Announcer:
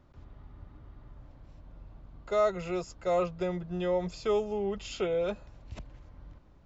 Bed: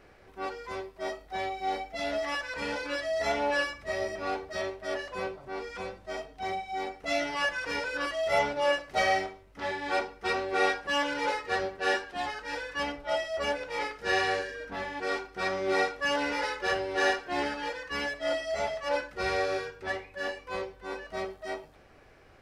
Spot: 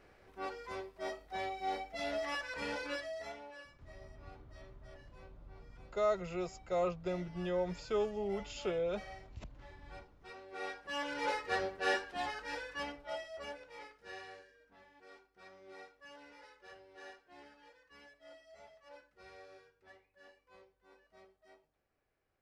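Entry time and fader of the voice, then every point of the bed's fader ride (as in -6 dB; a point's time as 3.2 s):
3.65 s, -5.5 dB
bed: 2.92 s -6 dB
3.52 s -24.5 dB
10.19 s -24.5 dB
11.31 s -5 dB
12.42 s -5 dB
14.64 s -26.5 dB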